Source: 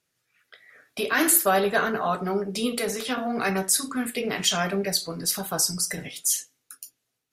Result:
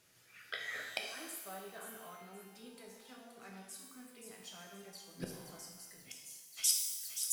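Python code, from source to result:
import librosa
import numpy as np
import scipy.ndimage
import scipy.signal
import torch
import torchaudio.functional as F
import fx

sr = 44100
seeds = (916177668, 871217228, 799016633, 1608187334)

y = fx.echo_wet_highpass(x, sr, ms=525, feedback_pct=33, hz=4700.0, wet_db=-5.0)
y = fx.gate_flip(y, sr, shuts_db=-24.0, range_db=-37)
y = fx.rev_shimmer(y, sr, seeds[0], rt60_s=1.2, semitones=12, shimmer_db=-8, drr_db=1.5)
y = y * librosa.db_to_amplitude(7.5)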